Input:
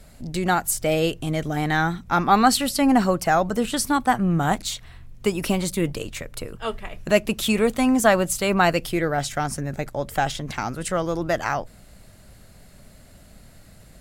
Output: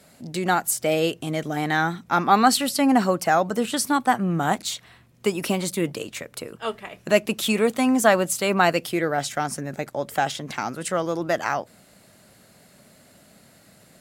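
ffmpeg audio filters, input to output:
-af "highpass=180"

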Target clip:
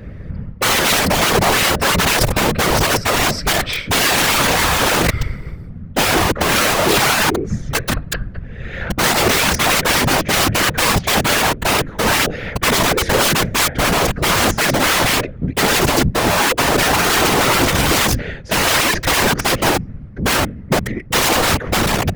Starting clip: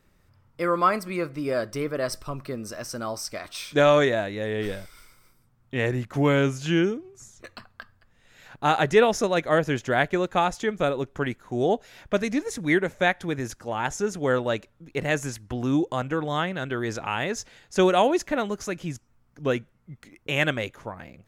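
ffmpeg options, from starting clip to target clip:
-af "aemphasis=mode=reproduction:type=bsi,apsyclip=10,equalizer=f=125:t=o:w=1:g=9,equalizer=f=500:t=o:w=1:g=12,equalizer=f=1000:t=o:w=1:g=-6,equalizer=f=2000:t=o:w=1:g=9,equalizer=f=8000:t=o:w=1:g=-8,areverse,acompressor=threshold=0.562:ratio=8,areverse,bandreject=f=75.26:t=h:w=4,bandreject=f=150.52:t=h:w=4,bandreject=f=225.78:t=h:w=4,aeval=exprs='(mod(2.51*val(0)+1,2)-1)/2.51':c=same,afftfilt=real='hypot(re,im)*cos(2*PI*random(0))':imag='hypot(re,im)*sin(2*PI*random(1))':win_size=512:overlap=0.75,asetrate=42336,aresample=44100,volume=1.58"

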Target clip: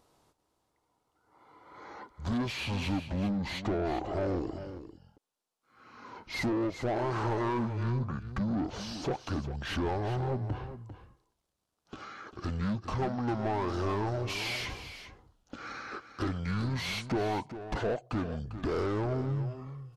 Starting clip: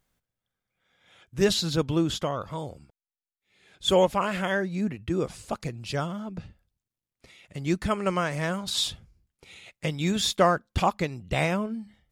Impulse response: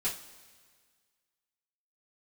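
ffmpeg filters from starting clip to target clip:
-filter_complex "[0:a]equalizer=f=3300:t=o:w=1.1:g=-11.5,acompressor=threshold=0.0282:ratio=10,asplit=2[s0][s1];[s1]highpass=f=720:p=1,volume=14.1,asoftclip=type=tanh:threshold=0.0668[s2];[s0][s2]amix=inputs=2:normalize=0,lowpass=f=2700:p=1,volume=0.501,asetrate=26769,aresample=44100,asplit=2[s3][s4];[s4]aecho=0:1:398:0.266[s5];[s3][s5]amix=inputs=2:normalize=0"

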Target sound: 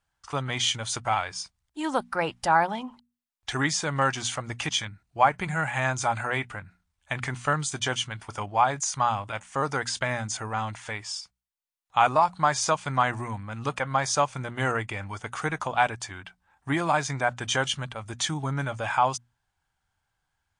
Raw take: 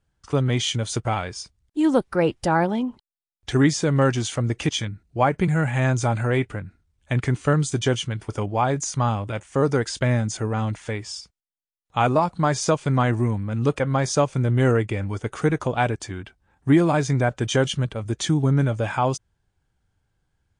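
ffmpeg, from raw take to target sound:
-af "lowshelf=f=600:t=q:w=1.5:g=-10,bandreject=f=60:t=h:w=6,bandreject=f=120:t=h:w=6,bandreject=f=180:t=h:w=6,bandreject=f=240:t=h:w=6"

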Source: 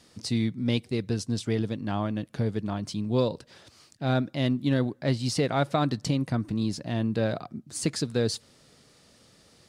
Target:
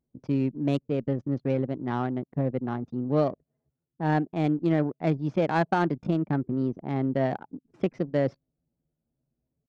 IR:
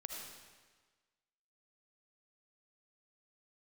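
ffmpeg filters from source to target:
-af "highpass=f=89:p=1,anlmdn=6.31,lowpass=2500,asetrate=52444,aresample=44100,atempo=0.840896,adynamicsmooth=sensitivity=2:basefreq=1600,volume=1.19"

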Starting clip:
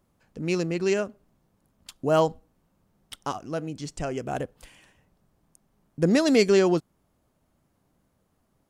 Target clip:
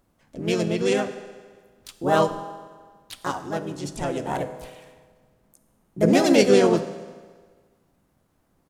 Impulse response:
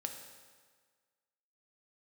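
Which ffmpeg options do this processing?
-filter_complex "[0:a]bandreject=f=152.6:t=h:w=4,bandreject=f=305.2:t=h:w=4,bandreject=f=457.8:t=h:w=4,bandreject=f=610.4:t=h:w=4,bandreject=f=763:t=h:w=4,bandreject=f=915.6:t=h:w=4,bandreject=f=1068.2:t=h:w=4,bandreject=f=1220.8:t=h:w=4,bandreject=f=1373.4:t=h:w=4,bandreject=f=1526:t=h:w=4,bandreject=f=1678.6:t=h:w=4,bandreject=f=1831.2:t=h:w=4,bandreject=f=1983.8:t=h:w=4,asplit=2[s0][s1];[1:a]atrim=start_sample=2205[s2];[s1][s2]afir=irnorm=-1:irlink=0,volume=1.58[s3];[s0][s3]amix=inputs=2:normalize=0,asplit=4[s4][s5][s6][s7];[s5]asetrate=29433,aresample=44100,atempo=1.49831,volume=0.141[s8];[s6]asetrate=35002,aresample=44100,atempo=1.25992,volume=0.158[s9];[s7]asetrate=55563,aresample=44100,atempo=0.793701,volume=0.794[s10];[s4][s8][s9][s10]amix=inputs=4:normalize=0,volume=0.473"

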